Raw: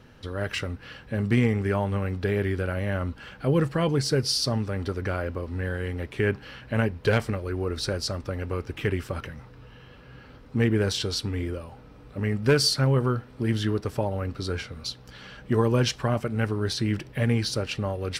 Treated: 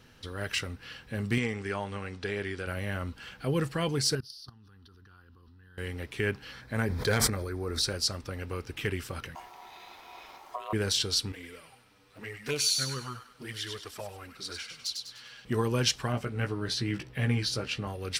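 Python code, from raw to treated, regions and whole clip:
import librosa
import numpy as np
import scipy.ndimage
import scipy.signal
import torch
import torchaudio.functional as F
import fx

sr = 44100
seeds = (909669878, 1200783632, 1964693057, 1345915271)

y = fx.chain(x, sr, fx.lowpass(hz=8700.0, slope=24),
    fx.low_shelf(hz=200.0, db=-8.5), at=(1.38, 2.67))
y = fx.chain(y, sr, fx.level_steps(step_db=24),
    fx.fixed_phaser(hz=2200.0, stages=6), at=(4.15, 5.78))
y = fx.chain(y, sr, fx.peak_eq(hz=2700.0, db=-9.0, octaves=0.33),
    fx.notch(hz=2900.0, q=8.1),
    fx.sustainer(db_per_s=29.0), at=(6.52, 7.82))
y = fx.chain(y, sr, fx.high_shelf(hz=10000.0, db=11.5),
    fx.over_compress(threshold_db=-27.0, ratio=-0.5),
    fx.ring_mod(carrier_hz=850.0), at=(9.35, 10.73))
y = fx.chain(y, sr, fx.low_shelf(hz=420.0, db=-10.0),
    fx.env_flanger(rest_ms=11.8, full_db=-21.5),
    fx.echo_wet_highpass(ms=99, feedback_pct=40, hz=1700.0, wet_db=-4), at=(11.32, 15.45))
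y = fx.chain(y, sr, fx.high_shelf(hz=5100.0, db=-10.0),
    fx.doubler(ms=16.0, db=-5), at=(16.12, 17.87))
y = fx.high_shelf(y, sr, hz=2300.0, db=11.0)
y = fx.notch(y, sr, hz=580.0, q=15.0)
y = F.gain(torch.from_numpy(y), -6.5).numpy()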